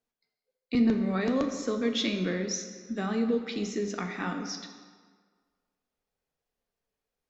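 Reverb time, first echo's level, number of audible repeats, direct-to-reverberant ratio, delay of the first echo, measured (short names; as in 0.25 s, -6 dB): 1.7 s, none, none, 4.5 dB, none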